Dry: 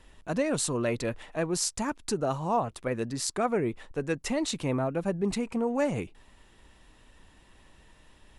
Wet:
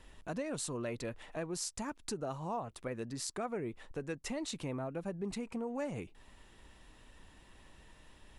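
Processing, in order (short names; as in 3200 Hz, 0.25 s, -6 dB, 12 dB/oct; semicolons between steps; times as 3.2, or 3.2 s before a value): compressor 2:1, threshold -41 dBFS, peak gain reduction 10.5 dB; gain -1.5 dB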